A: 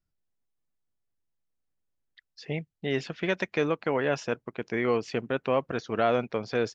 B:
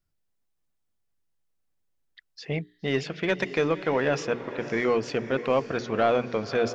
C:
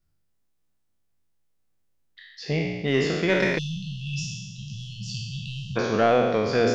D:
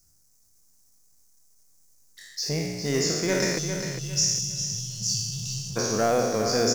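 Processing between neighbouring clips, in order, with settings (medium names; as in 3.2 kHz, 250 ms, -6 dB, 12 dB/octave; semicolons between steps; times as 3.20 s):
hum notches 60/120/180/240/300/360/420 Hz; in parallel at -5 dB: saturation -26 dBFS, distortion -9 dB; on the sum: echo that smears into a reverb 558 ms, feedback 48%, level -13 dB
spectral sustain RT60 1.31 s; bass shelf 320 Hz +4.5 dB; spectral selection erased 3.58–5.77 s, 210–2600 Hz
companding laws mixed up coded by mu; resonant high shelf 4.4 kHz +11.5 dB, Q 3; on a send: feedback delay 403 ms, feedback 31%, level -8 dB; on the sum: trim -3.5 dB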